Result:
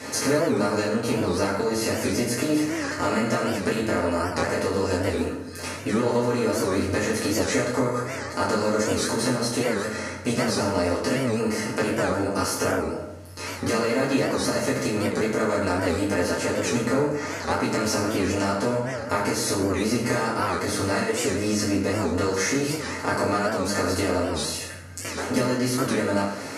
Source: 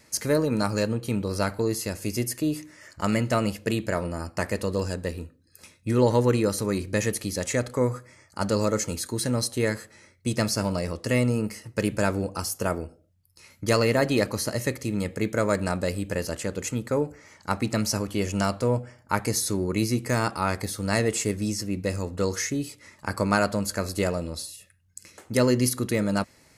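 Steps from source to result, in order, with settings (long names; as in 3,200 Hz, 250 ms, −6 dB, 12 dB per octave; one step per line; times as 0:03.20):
compressor on every frequency bin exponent 0.6
high-pass filter 140 Hz 12 dB per octave
high-shelf EQ 10,000 Hz −11.5 dB
downward compressor, threshold −26 dBFS, peak gain reduction 12.5 dB
convolution reverb RT60 0.90 s, pre-delay 5 ms, DRR −8 dB
wow of a warped record 78 rpm, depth 160 cents
level −2 dB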